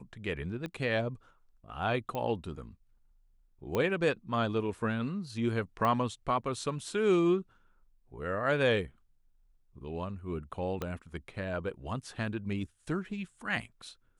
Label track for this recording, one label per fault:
0.660000	0.660000	click −25 dBFS
2.150000	2.150000	click −22 dBFS
3.750000	3.750000	click −18 dBFS
5.850000	5.850000	click −19 dBFS
10.820000	10.820000	click −20 dBFS

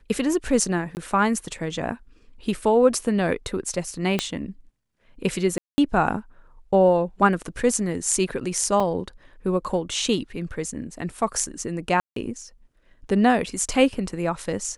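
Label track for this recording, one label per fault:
0.950000	0.970000	drop-out 19 ms
4.190000	4.190000	click −8 dBFS
5.580000	5.780000	drop-out 200 ms
8.800000	8.800000	drop-out 3.7 ms
12.000000	12.160000	drop-out 163 ms

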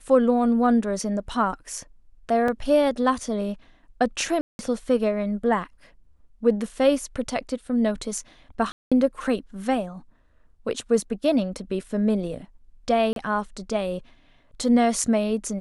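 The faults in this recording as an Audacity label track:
2.480000	2.480000	drop-out 3.4 ms
4.410000	4.590000	drop-out 181 ms
8.720000	8.920000	drop-out 196 ms
13.130000	13.160000	drop-out 32 ms

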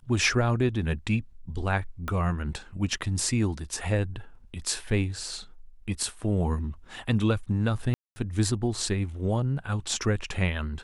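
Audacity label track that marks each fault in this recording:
2.080000	2.080000	click −18 dBFS
7.940000	8.160000	drop-out 220 ms

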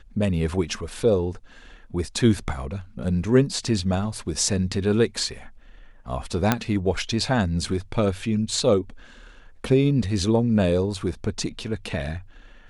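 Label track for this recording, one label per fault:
6.520000	6.520000	click −4 dBFS

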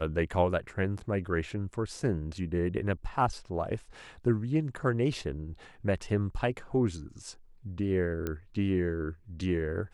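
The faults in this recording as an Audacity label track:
8.270000	8.270000	click −19 dBFS

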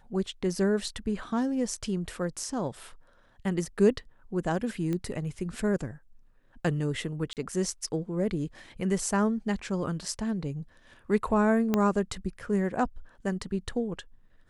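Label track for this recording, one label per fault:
4.930000	4.930000	click −20 dBFS
7.330000	7.370000	drop-out 38 ms
11.740000	11.740000	click −12 dBFS

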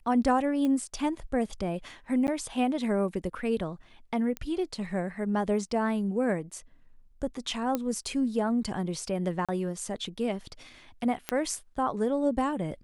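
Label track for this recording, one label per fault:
0.650000	0.650000	click −20 dBFS
2.270000	2.280000	drop-out 9.9 ms
4.370000	4.370000	click −19 dBFS
7.750000	7.750000	click −15 dBFS
9.450000	9.490000	drop-out 36 ms
11.290000	11.290000	click −12 dBFS

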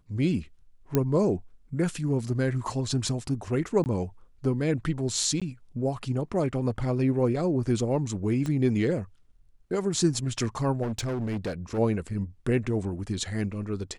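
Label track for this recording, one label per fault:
0.950000	0.950000	click −10 dBFS
3.840000	3.860000	drop-out 19 ms
5.400000	5.420000	drop-out 16 ms
8.460000	8.460000	click −20 dBFS
10.820000	11.790000	clipping −26.5 dBFS

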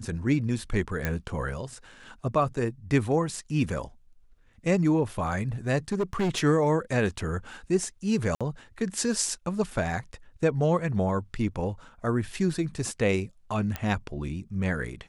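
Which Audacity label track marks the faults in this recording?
1.050000	1.050000	click −13 dBFS
5.920000	6.390000	clipping −22 dBFS
8.350000	8.410000	drop-out 56 ms
13.760000	13.760000	click −15 dBFS

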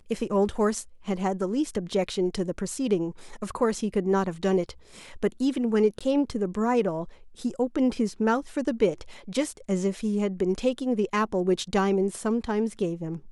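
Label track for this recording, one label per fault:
5.990000	6.010000	drop-out 16 ms

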